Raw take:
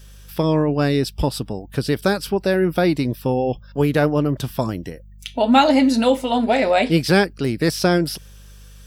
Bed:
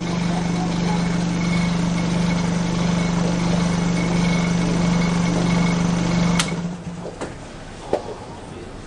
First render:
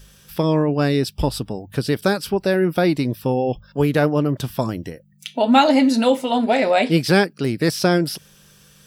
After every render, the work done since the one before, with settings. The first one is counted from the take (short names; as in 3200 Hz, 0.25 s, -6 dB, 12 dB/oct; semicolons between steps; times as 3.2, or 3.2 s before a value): de-hum 50 Hz, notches 2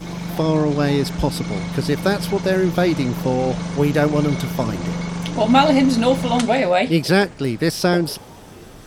add bed -6.5 dB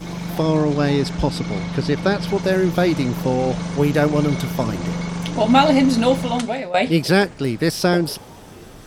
0.74–2.26 LPF 9500 Hz -> 5200 Hz; 6.11–6.74 fade out, to -14.5 dB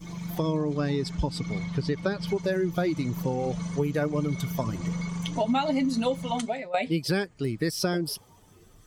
per-bin expansion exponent 1.5; compressor 4:1, threshold -24 dBFS, peak gain reduction 12.5 dB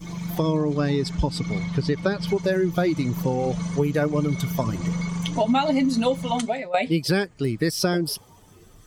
gain +4.5 dB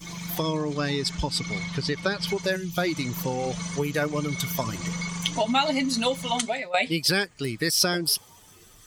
2.56–2.77 spectral gain 230–2300 Hz -11 dB; tilt shelf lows -6.5 dB, about 1100 Hz